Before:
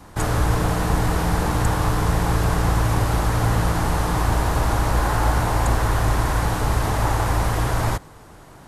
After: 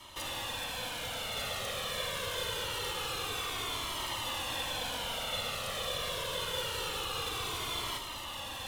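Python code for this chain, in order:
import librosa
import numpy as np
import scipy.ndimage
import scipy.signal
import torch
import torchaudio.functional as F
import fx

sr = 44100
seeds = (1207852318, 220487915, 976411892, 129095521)

p1 = fx.highpass(x, sr, hz=1100.0, slope=6)
p2 = fx.over_compress(p1, sr, threshold_db=-32.0, ratio=-1.0)
p3 = p1 + F.gain(torch.from_numpy(p2), 2.5).numpy()
p4 = 10.0 ** (-26.5 / 20.0) * np.tanh(p3 / 10.0 ** (-26.5 / 20.0))
p5 = fx.small_body(p4, sr, hz=(1500.0, 2100.0), ring_ms=35, db=11)
p6 = p5 * np.sin(2.0 * np.pi * 2000.0 * np.arange(len(p5)) / sr)
p7 = p6 + fx.echo_single(p6, sr, ms=1198, db=-3.5, dry=0)
p8 = fx.comb_cascade(p7, sr, direction='falling', hz=0.25)
y = F.gain(torch.from_numpy(p8), -3.0).numpy()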